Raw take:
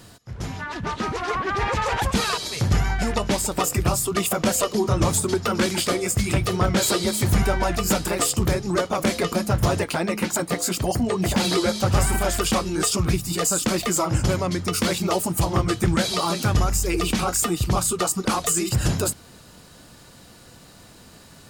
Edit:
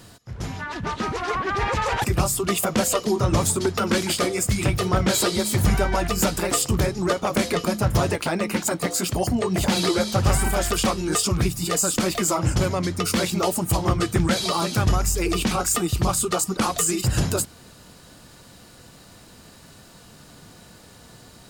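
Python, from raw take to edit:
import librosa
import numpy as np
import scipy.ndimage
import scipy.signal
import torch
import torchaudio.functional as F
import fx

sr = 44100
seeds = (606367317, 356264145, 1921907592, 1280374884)

y = fx.edit(x, sr, fx.cut(start_s=2.04, length_s=1.68), tone=tone)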